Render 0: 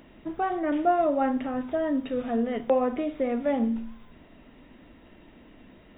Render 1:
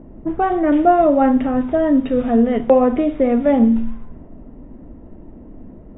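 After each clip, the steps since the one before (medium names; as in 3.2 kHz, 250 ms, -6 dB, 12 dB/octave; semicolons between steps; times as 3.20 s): level-controlled noise filter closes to 660 Hz, open at -23 dBFS; tilt EQ -2 dB/octave; trim +8.5 dB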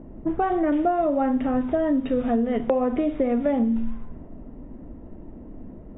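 compression, threshold -17 dBFS, peak gain reduction 9.5 dB; trim -2 dB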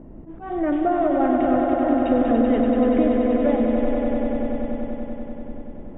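slow attack 228 ms; echo with a slow build-up 96 ms, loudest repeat 5, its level -6.5 dB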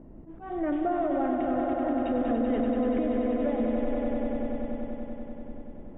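peak limiter -12 dBFS, peak gain reduction 5.5 dB; trim -6.5 dB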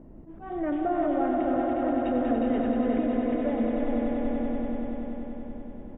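delay 359 ms -4.5 dB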